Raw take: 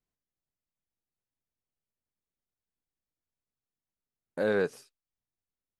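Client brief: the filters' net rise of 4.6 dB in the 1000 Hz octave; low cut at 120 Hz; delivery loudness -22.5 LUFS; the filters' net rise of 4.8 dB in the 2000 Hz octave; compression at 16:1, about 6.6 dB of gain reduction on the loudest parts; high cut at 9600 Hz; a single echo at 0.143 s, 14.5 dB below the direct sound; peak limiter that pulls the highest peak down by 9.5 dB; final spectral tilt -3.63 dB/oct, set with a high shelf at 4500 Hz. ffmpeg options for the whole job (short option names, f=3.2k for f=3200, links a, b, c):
-af "highpass=120,lowpass=9.6k,equalizer=f=1k:t=o:g=5,equalizer=f=2k:t=o:g=3,highshelf=f=4.5k:g=8.5,acompressor=threshold=-27dB:ratio=16,alimiter=level_in=4dB:limit=-24dB:level=0:latency=1,volume=-4dB,aecho=1:1:143:0.188,volume=18.5dB"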